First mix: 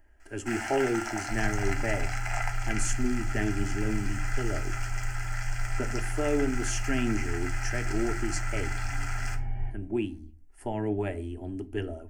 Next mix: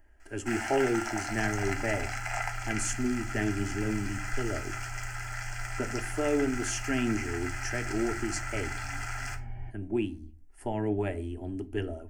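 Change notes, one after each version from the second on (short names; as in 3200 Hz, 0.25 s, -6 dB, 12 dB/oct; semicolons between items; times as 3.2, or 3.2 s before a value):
second sound: send -11.5 dB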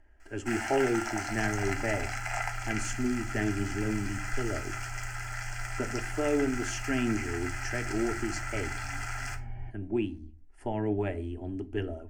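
speech: add air absorption 67 m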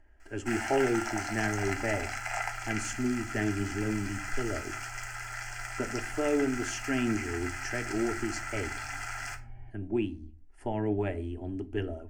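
second sound -7.5 dB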